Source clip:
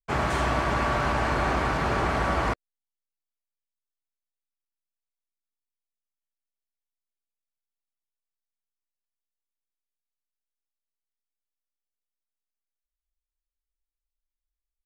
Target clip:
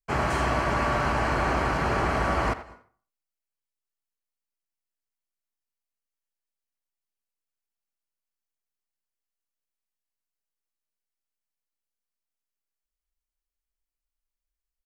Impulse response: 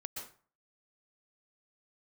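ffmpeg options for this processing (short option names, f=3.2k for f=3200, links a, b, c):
-filter_complex "[0:a]bandreject=f=3.6k:w=7.1,asplit=2[a][b];[b]adelay=90,highpass=300,lowpass=3.4k,asoftclip=type=hard:threshold=-21.5dB,volume=-13dB[c];[a][c]amix=inputs=2:normalize=0,asplit=2[d][e];[1:a]atrim=start_sample=2205,adelay=73[f];[e][f]afir=irnorm=-1:irlink=0,volume=-17.5dB[g];[d][g]amix=inputs=2:normalize=0"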